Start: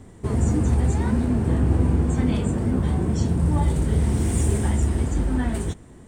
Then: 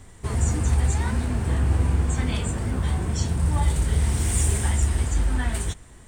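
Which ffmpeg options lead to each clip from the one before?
ffmpeg -i in.wav -af "equalizer=frequency=260:width=0.37:gain=-14.5,volume=6dB" out.wav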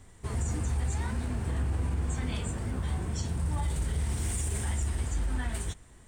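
ffmpeg -i in.wav -af "alimiter=limit=-15.5dB:level=0:latency=1:release=35,volume=-7dB" out.wav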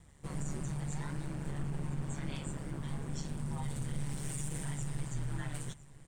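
ffmpeg -i in.wav -af "aeval=exprs='val(0)*sin(2*PI*72*n/s)':channel_layout=same,aecho=1:1:1006:0.106,volume=-3.5dB" out.wav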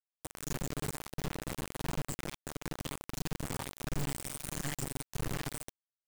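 ffmpeg -i in.wav -af "afftfilt=real='re*pow(10,14/40*sin(2*PI*(1.5*log(max(b,1)*sr/1024/100)/log(2)-(1.5)*(pts-256)/sr)))':imag='im*pow(10,14/40*sin(2*PI*(1.5*log(max(b,1)*sr/1024/100)/log(2)-(1.5)*(pts-256)/sr)))':win_size=1024:overlap=0.75,acrusher=bits=4:mix=0:aa=0.000001,volume=-4.5dB" out.wav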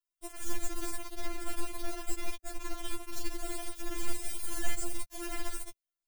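ffmpeg -i in.wav -filter_complex "[0:a]acrossover=split=110[link_01][link_02];[link_01]aeval=exprs='0.0376*sin(PI/2*3.55*val(0)/0.0376)':channel_layout=same[link_03];[link_02]aexciter=amount=1.1:drive=3.6:freq=10000[link_04];[link_03][link_04]amix=inputs=2:normalize=0,afftfilt=real='re*4*eq(mod(b,16),0)':imag='im*4*eq(mod(b,16),0)':win_size=2048:overlap=0.75,volume=2.5dB" out.wav

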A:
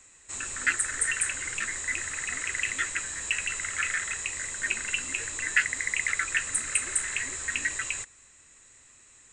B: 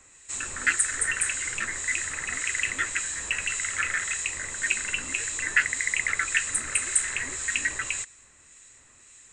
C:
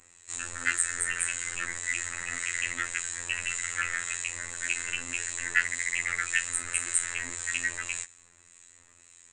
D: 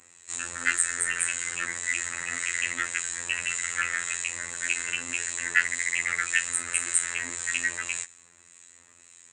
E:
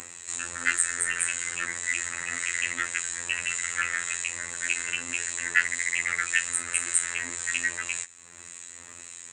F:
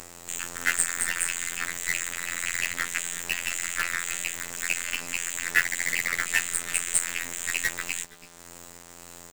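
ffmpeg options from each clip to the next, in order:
ffmpeg -i in.wav -filter_complex "[0:a]acrossover=split=1800[link_01][link_02];[link_01]aeval=exprs='val(0)*(1-0.5/2+0.5/2*cos(2*PI*1.8*n/s))':channel_layout=same[link_03];[link_02]aeval=exprs='val(0)*(1-0.5/2-0.5/2*cos(2*PI*1.8*n/s))':channel_layout=same[link_04];[link_03][link_04]amix=inputs=2:normalize=0,volume=4.5dB" out.wav
ffmpeg -i in.wav -af "afftfilt=real='hypot(re,im)*cos(PI*b)':imag='0':win_size=2048:overlap=0.75" out.wav
ffmpeg -i in.wav -af "highpass=110,volume=2.5dB" out.wav
ffmpeg -i in.wav -af "acompressor=mode=upward:threshold=-29dB:ratio=2.5" out.wav
ffmpeg -i in.wav -filter_complex "[0:a]asplit=2[link_01][link_02];[link_02]adelay=330,highpass=300,lowpass=3400,asoftclip=type=hard:threshold=-10.5dB,volume=-14dB[link_03];[link_01][link_03]amix=inputs=2:normalize=0,acrusher=bits=5:dc=4:mix=0:aa=0.000001" out.wav

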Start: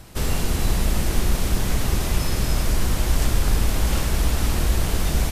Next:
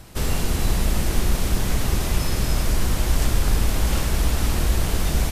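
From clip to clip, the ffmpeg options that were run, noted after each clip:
ffmpeg -i in.wav -af anull out.wav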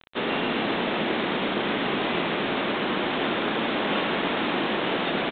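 ffmpeg -i in.wav -af "highpass=frequency=230:width=0.5412,highpass=frequency=230:width=1.3066,aresample=8000,acrusher=bits=6:mix=0:aa=0.000001,aresample=44100,aecho=1:1:133:0.501,volume=4.5dB" out.wav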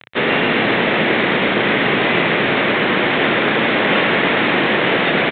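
ffmpeg -i in.wav -af "equalizer=frequency=125:width_type=o:width=1:gain=9,equalizer=frequency=500:width_type=o:width=1:gain=5,equalizer=frequency=2000:width_type=o:width=1:gain=10,volume=5dB" out.wav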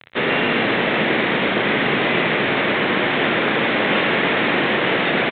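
ffmpeg -i in.wav -af "aecho=1:1:47|60:0.188|0.168,volume=-3dB" out.wav

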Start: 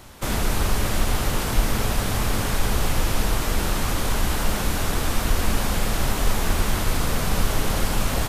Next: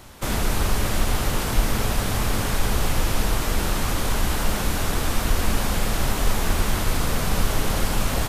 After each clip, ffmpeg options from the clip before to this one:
ffmpeg -i in.wav -af anull out.wav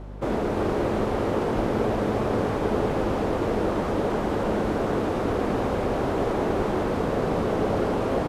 ffmpeg -i in.wav -af "bandpass=frequency=420:width_type=q:width=1.3:csg=0,aeval=exprs='val(0)+0.00631*(sin(2*PI*50*n/s)+sin(2*PI*2*50*n/s)/2+sin(2*PI*3*50*n/s)/3+sin(2*PI*4*50*n/s)/4+sin(2*PI*5*50*n/s)/5)':channel_layout=same,aecho=1:1:349:0.562,volume=7.5dB" out.wav

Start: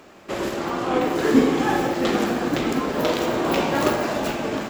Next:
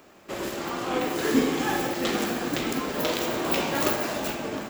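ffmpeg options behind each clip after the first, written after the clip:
ffmpeg -i in.wav -filter_complex "[0:a]highshelf=frequency=11000:gain=11.5,acrossover=split=1700[link_01][link_02];[link_02]dynaudnorm=framelen=110:gausssize=9:maxgain=5dB[link_03];[link_01][link_03]amix=inputs=2:normalize=0,volume=-6dB" out.wav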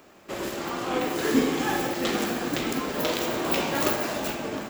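ffmpeg -i in.wav -af anull out.wav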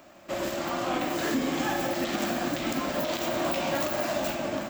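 ffmpeg -i in.wav -af "superequalizer=7b=0.398:8b=1.78:16b=0.501,alimiter=limit=-18dB:level=0:latency=1:release=122" out.wav

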